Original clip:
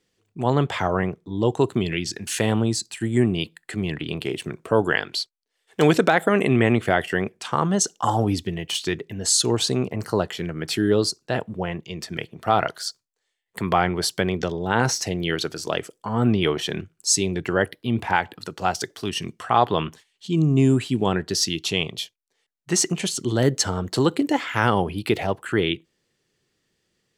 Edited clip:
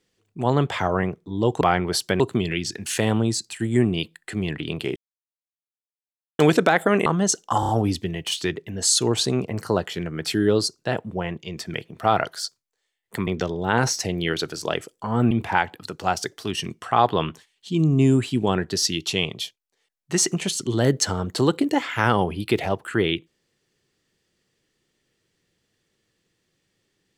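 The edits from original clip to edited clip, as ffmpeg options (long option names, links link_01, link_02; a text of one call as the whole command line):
ffmpeg -i in.wav -filter_complex "[0:a]asplit=11[link_01][link_02][link_03][link_04][link_05][link_06][link_07][link_08][link_09][link_10][link_11];[link_01]atrim=end=1.612[link_12];[link_02]atrim=start=13.698:end=14.292[link_13];[link_03]atrim=start=1.608:end=4.37,asetpts=PTS-STARTPTS,afade=type=out:start_time=2.758:duration=0.004:curve=hsin[link_14];[link_04]atrim=start=4.37:end=5.8,asetpts=PTS-STARTPTS,volume=0[link_15];[link_05]atrim=start=5.8:end=6.472,asetpts=PTS-STARTPTS,afade=type=in:duration=0.004:curve=hsin[link_16];[link_06]atrim=start=7.578:end=8.152[link_17];[link_07]atrim=start=8.118:end=8.152[link_18];[link_08]atrim=start=8.118:end=8.152[link_19];[link_09]atrim=start=8.118:end=13.702[link_20];[link_10]atrim=start=14.288:end=16.332[link_21];[link_11]atrim=start=17.888[link_22];[link_12][link_13]acrossfade=duration=0.004:curve1=hsin:curve2=hsin[link_23];[link_14][link_15][link_16]concat=n=3:v=0:a=1[link_24];[link_23][link_24]acrossfade=duration=0.004:curve1=hsin:curve2=hsin[link_25];[link_25][link_17]acrossfade=duration=0.004:curve1=hsin:curve2=hsin[link_26];[link_26][link_18]acrossfade=duration=0.004:curve1=hsin:curve2=hsin[link_27];[link_27][link_19]acrossfade=duration=0.004:curve1=hsin:curve2=hsin[link_28];[link_28][link_20]acrossfade=duration=0.004:curve1=hsin:curve2=hsin[link_29];[link_29][link_21]acrossfade=duration=0.004:curve1=hsin:curve2=hsin[link_30];[link_30][link_22]acrossfade=duration=0.004:curve1=hsin:curve2=hsin" out.wav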